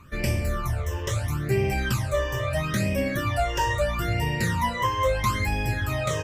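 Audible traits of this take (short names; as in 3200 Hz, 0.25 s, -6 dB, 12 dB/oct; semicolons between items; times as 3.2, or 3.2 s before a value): phasing stages 12, 0.76 Hz, lowest notch 220–1300 Hz; MP3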